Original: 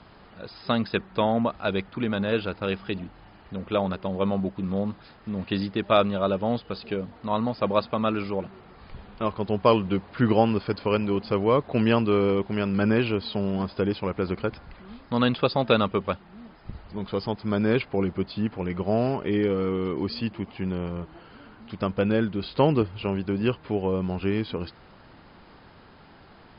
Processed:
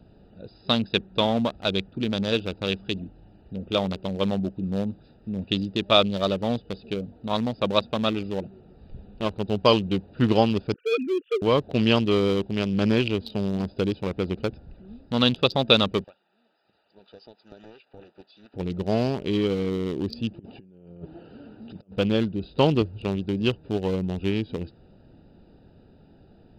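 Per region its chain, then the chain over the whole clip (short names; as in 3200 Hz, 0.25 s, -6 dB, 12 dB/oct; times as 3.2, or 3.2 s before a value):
10.74–11.42 sine-wave speech + brick-wall FIR band-stop 500–1200 Hz + bell 2900 Hz +5.5 dB 0.65 oct
16.04–18.54 HPF 1100 Hz + compressor, threshold -36 dBFS + Doppler distortion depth 0.54 ms
20.39–21.96 HPF 200 Hz 6 dB/oct + negative-ratio compressor -40 dBFS, ratio -0.5
whole clip: Wiener smoothing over 41 samples; resonant high shelf 2500 Hz +9 dB, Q 1.5; gain +1 dB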